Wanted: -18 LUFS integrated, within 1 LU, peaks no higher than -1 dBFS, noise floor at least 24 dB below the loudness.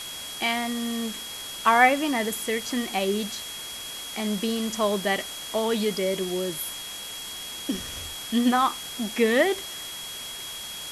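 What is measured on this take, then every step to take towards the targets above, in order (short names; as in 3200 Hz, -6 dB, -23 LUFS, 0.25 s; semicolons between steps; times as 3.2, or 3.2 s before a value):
steady tone 3300 Hz; tone level -37 dBFS; noise floor -37 dBFS; noise floor target -51 dBFS; loudness -26.5 LUFS; peak -4.5 dBFS; loudness target -18.0 LUFS
-> notch 3300 Hz, Q 30; noise print and reduce 14 dB; gain +8.5 dB; limiter -1 dBFS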